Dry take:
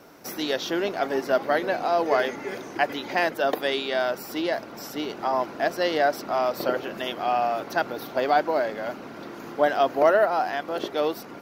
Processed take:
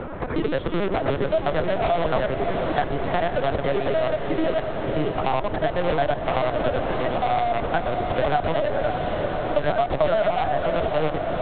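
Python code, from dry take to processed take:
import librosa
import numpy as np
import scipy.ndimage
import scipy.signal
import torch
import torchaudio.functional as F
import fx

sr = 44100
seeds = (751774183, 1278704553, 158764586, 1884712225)

p1 = fx.local_reverse(x, sr, ms=73.0)
p2 = scipy.signal.sosfilt(scipy.signal.butter(2, 1400.0, 'lowpass', fs=sr, output='sos'), p1)
p3 = (np.mod(10.0 ** (22.5 / 20.0) * p2 + 1.0, 2.0) - 1.0) / 10.0 ** (22.5 / 20.0)
p4 = p2 + (p3 * 10.0 ** (-5.0 / 20.0))
p5 = fx.lpc_vocoder(p4, sr, seeds[0], excitation='pitch_kept', order=10)
p6 = p5 + fx.echo_diffused(p5, sr, ms=582, feedback_pct=59, wet_db=-8.5, dry=0)
p7 = fx.band_squash(p6, sr, depth_pct=70)
y = p7 * 10.0 ** (1.0 / 20.0)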